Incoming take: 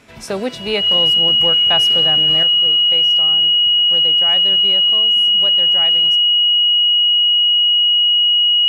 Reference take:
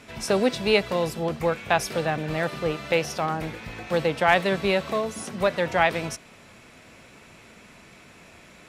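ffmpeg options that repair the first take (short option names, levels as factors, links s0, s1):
-af "bandreject=f=2900:w=30,asetnsamples=n=441:p=0,asendcmd='2.43 volume volume 9dB',volume=1"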